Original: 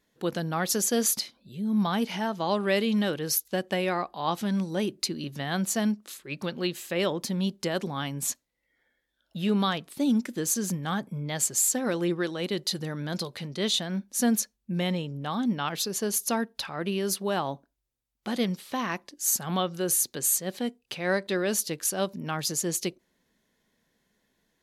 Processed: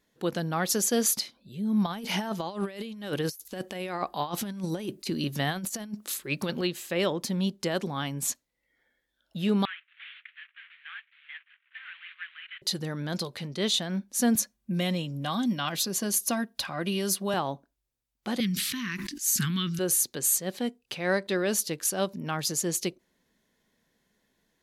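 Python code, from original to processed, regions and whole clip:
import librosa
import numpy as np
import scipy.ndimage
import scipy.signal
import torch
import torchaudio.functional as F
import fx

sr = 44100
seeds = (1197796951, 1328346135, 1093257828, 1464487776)

y = fx.chain(x, sr, fx.high_shelf(hz=9200.0, db=9.5),
    fx.over_compress(threshold_db=-31.0, ratio=-0.5), at=(1.86, 6.61))
y = fx.chain(y, sr, fx.cvsd(bps=16000),
    fx.steep_highpass(hz=1600.0, slope=36), at=(9.65, 12.62))
y = fx.chain(y, sr, fx.high_shelf(hz=5200.0, db=4.5),
    fx.notch_comb(f0_hz=440.0),
    fx.band_squash(depth_pct=40), at=(14.35, 17.34))
y = fx.chain(y, sr, fx.cheby1_bandstop(low_hz=230.0, high_hz=1800.0, order=2),
    fx.sustainer(db_per_s=22.0), at=(18.4, 19.79))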